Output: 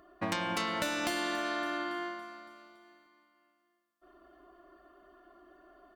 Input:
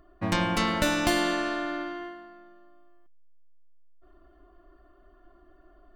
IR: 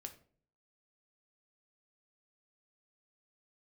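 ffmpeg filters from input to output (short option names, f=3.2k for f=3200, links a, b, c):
-af "highpass=f=380:p=1,acompressor=threshold=-34dB:ratio=6,aecho=1:1:281|562|843|1124|1405|1686:0.178|0.103|0.0598|0.0347|0.0201|0.0117,volume=3.5dB"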